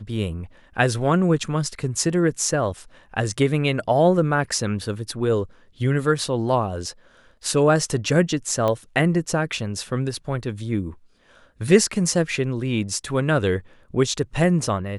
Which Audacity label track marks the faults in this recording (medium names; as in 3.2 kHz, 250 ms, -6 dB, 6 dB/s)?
8.680000	8.680000	pop -12 dBFS